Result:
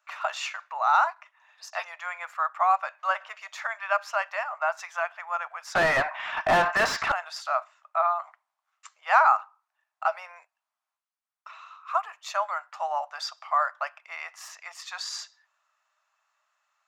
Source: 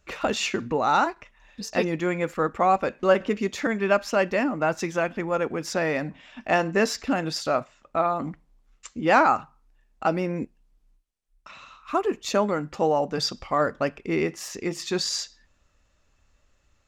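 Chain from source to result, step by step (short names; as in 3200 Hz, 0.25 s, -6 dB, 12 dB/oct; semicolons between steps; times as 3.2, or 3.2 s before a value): Chebyshev high-pass 630 Hz, order 6; bell 1200 Hz +11 dB 1.1 oct; 5.75–7.12 overdrive pedal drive 32 dB, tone 1200 Hz, clips at -4 dBFS; gain -7 dB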